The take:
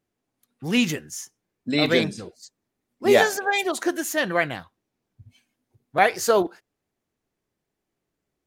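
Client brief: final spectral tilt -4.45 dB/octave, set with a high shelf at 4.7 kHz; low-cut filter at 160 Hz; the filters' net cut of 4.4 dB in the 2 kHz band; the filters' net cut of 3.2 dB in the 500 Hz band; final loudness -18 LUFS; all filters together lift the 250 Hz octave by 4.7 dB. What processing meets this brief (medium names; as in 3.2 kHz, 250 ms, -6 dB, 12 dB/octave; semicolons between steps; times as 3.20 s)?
high-pass 160 Hz; peaking EQ 250 Hz +8.5 dB; peaking EQ 500 Hz -7 dB; peaking EQ 2 kHz -4.5 dB; treble shelf 4.7 kHz -3.5 dB; trim +5.5 dB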